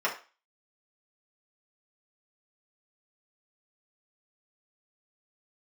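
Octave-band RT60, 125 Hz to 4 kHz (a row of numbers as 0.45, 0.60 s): 0.20, 0.30, 0.35, 0.35, 0.35, 0.35 s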